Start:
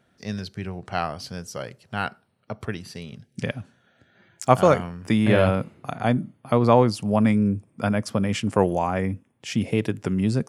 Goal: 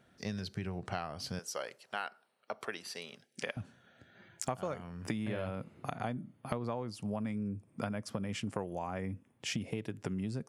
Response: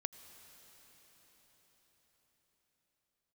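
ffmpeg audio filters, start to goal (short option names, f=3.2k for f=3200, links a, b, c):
-filter_complex "[0:a]asettb=1/sr,asplit=3[a][b][c];[a]atrim=end=1.394[d];[b]atrim=start=1.39:end=3.57,asetpts=PTS-STARTPTS,afade=t=in:d=0.004:c=qsin,afade=t=out:st=2.176:d=0.004:c=qsin,highpass=500[e];[c]atrim=start=3.566[f];[d][e]acrossfade=d=0.004:c1=hsin:c2=qsin[g];[g][f]acrossfade=d=0.004:c1=qsin:c2=hsin,acompressor=threshold=-32dB:ratio=10,volume=-1.5dB"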